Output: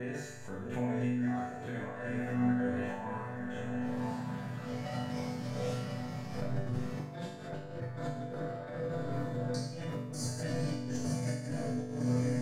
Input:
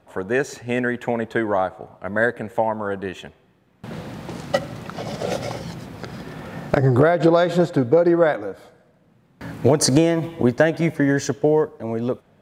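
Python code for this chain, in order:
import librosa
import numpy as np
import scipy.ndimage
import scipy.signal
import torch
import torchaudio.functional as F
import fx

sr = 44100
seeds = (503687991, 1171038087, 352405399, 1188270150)

p1 = fx.block_reorder(x, sr, ms=318.0, group=2)
p2 = fx.vibrato(p1, sr, rate_hz=6.7, depth_cents=16.0)
p3 = p2 + fx.echo_diffused(p2, sr, ms=1037, feedback_pct=48, wet_db=-6.5, dry=0)
p4 = fx.rev_schroeder(p3, sr, rt60_s=0.38, comb_ms=25, drr_db=-5.0)
p5 = np.clip(p4, -10.0 ** (-7.5 / 20.0), 10.0 ** (-7.5 / 20.0))
p6 = p4 + F.gain(torch.from_numpy(p5), -3.0).numpy()
p7 = fx.over_compress(p6, sr, threshold_db=-12.0, ratio=-0.5)
p8 = fx.low_shelf_res(p7, sr, hz=250.0, db=8.5, q=1.5)
p9 = fx.resonator_bank(p8, sr, root=43, chord='major', decay_s=0.77)
p10 = fx.pre_swell(p9, sr, db_per_s=64.0)
y = F.gain(torch.from_numpy(p10), -8.5).numpy()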